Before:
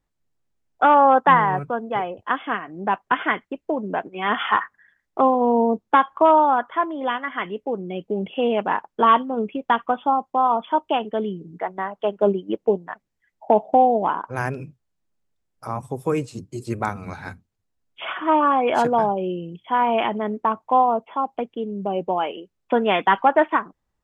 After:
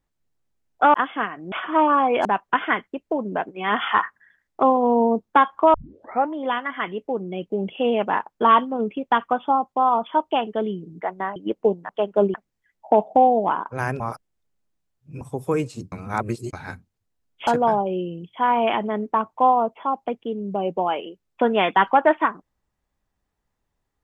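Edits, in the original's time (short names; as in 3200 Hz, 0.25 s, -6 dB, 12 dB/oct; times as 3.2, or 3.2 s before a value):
0.94–2.25 cut
6.32 tape start 0.60 s
11.94–12.39 move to 12.92
14.58–15.79 reverse
16.5–17.11 reverse
18.05–18.78 move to 2.83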